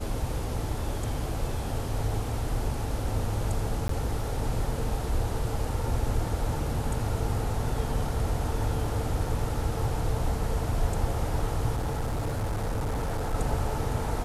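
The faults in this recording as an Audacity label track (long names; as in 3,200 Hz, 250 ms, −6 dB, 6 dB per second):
3.880000	3.890000	drop-out
11.760000	13.350000	clipping −25.5 dBFS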